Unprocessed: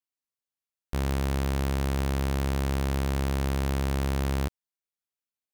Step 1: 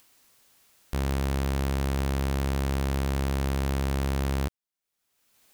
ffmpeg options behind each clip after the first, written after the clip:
-af "acompressor=mode=upward:threshold=-37dB:ratio=2.5"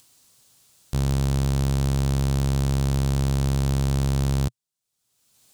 -af "equalizer=f=125:t=o:w=1:g=11,equalizer=f=2k:t=o:w=1:g=-5,equalizer=f=4k:t=o:w=1:g=4,equalizer=f=8k:t=o:w=1:g=7"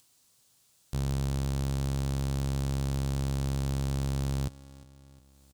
-af "aecho=1:1:356|712|1068|1424:0.119|0.063|0.0334|0.0177,volume=-7.5dB"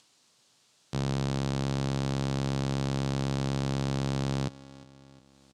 -af "highpass=170,lowpass=5.4k,volume=6dB"

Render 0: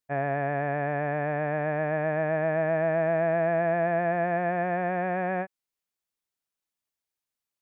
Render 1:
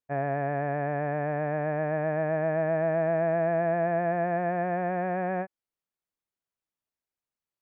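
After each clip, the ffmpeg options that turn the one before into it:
-af "highshelf=f=2.2k:g=-10"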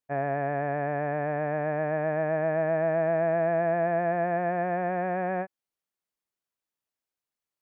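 -af "lowshelf=f=140:g=-6,volume=1dB"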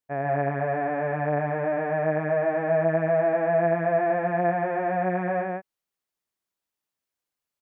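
-af "aecho=1:1:93.29|148.7:0.251|0.891"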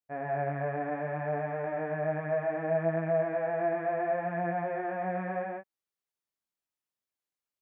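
-af "flanger=delay=18:depth=2.7:speed=0.67,volume=-4dB"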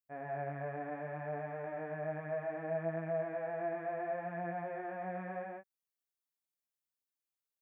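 -af "crystalizer=i=1:c=0,volume=-8dB"

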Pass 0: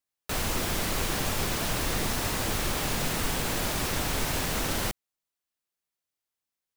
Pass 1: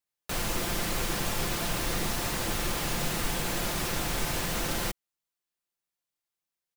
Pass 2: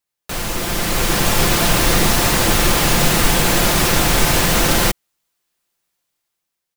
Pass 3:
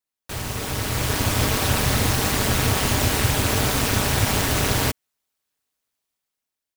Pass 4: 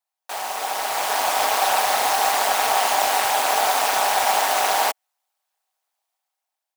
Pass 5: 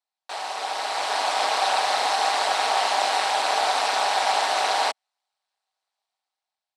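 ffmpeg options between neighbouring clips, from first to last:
-af "aecho=1:1:5.8:0.35,volume=-2dB"
-af "dynaudnorm=f=280:g=7:m=9dB,volume=6.5dB"
-af "aeval=exprs='val(0)*sin(2*PI*100*n/s)':c=same,volume=-3.5dB"
-af "highpass=f=760:t=q:w=4.7"
-af "highpass=f=140:w=0.5412,highpass=f=140:w=1.3066,equalizer=f=200:t=q:w=4:g=-10,equalizer=f=4.1k:t=q:w=4:g=6,equalizer=f=6.7k:t=q:w=4:g=-6,lowpass=f=8.2k:w=0.5412,lowpass=f=8.2k:w=1.3066,volume=-2.5dB"

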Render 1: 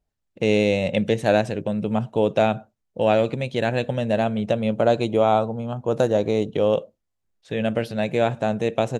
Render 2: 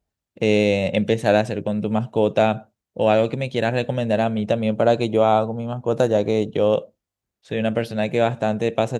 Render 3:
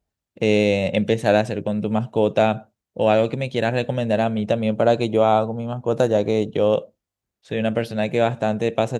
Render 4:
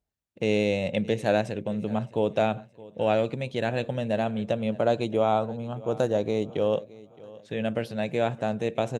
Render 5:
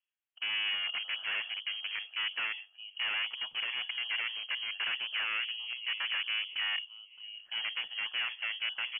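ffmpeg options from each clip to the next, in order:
-af "highpass=42,volume=1.5dB"
-af anull
-af "aecho=1:1:618|1236|1854:0.0944|0.034|0.0122,volume=-6.5dB"
-filter_complex "[0:a]aeval=exprs='0.0531*(abs(mod(val(0)/0.0531+3,4)-2)-1)':c=same,acrossover=split=360 2300:gain=0.158 1 0.0708[a][b][c];[a][b][c]amix=inputs=3:normalize=0,lowpass=f=2.9k:t=q:w=0.5098,lowpass=f=2.9k:t=q:w=0.6013,lowpass=f=2.9k:t=q:w=0.9,lowpass=f=2.9k:t=q:w=2.563,afreqshift=-3400"

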